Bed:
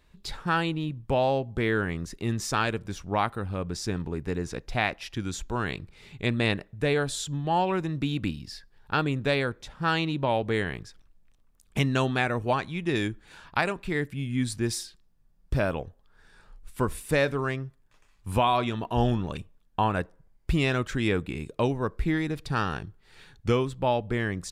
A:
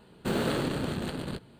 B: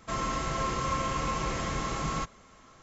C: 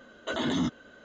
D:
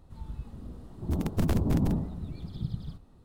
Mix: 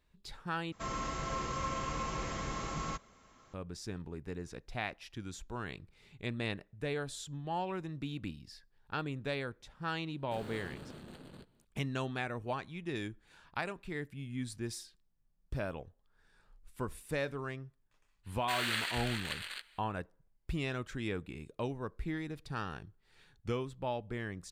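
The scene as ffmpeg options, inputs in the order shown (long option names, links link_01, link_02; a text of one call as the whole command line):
ffmpeg -i bed.wav -i cue0.wav -i cue1.wav -filter_complex "[1:a]asplit=2[link_01][link_02];[0:a]volume=-11.5dB[link_03];[link_01]aeval=exprs='clip(val(0),-1,0.0355)':channel_layout=same[link_04];[link_02]highpass=frequency=2000:width_type=q:width=2[link_05];[link_03]asplit=2[link_06][link_07];[link_06]atrim=end=0.724[link_08];[2:a]atrim=end=2.82,asetpts=PTS-STARTPTS,volume=-6.5dB[link_09];[link_07]atrim=start=3.536[link_10];[link_04]atrim=end=1.59,asetpts=PTS-STARTPTS,volume=-17dB,afade=type=in:duration=0.004:curve=hsin,afade=type=out:start_time=1.586:duration=0.004:curve=hsin,adelay=10060[link_11];[link_05]atrim=end=1.59,asetpts=PTS-STARTPTS,afade=type=in:duration=0.05,afade=type=out:start_time=1.54:duration=0.05,adelay=18230[link_12];[link_08][link_09]acrossfade=duration=0.004:curve1=hsin:curve2=hsin[link_13];[link_13][link_10]acrossfade=duration=0.004:curve1=hsin:curve2=hsin[link_14];[link_14][link_11][link_12]amix=inputs=3:normalize=0" out.wav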